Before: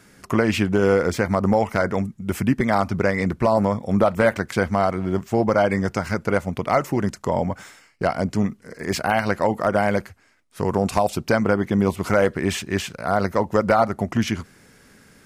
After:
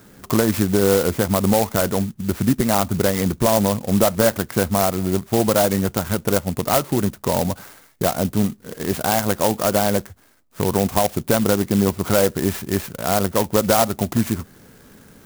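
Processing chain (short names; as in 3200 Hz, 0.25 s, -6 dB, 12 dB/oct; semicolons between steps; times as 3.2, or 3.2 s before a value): in parallel at 0 dB: compressor, threshold -29 dBFS, peak gain reduction 15.5 dB; on the sum: high shelf 2900 Hz -9 dB; clock jitter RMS 0.1 ms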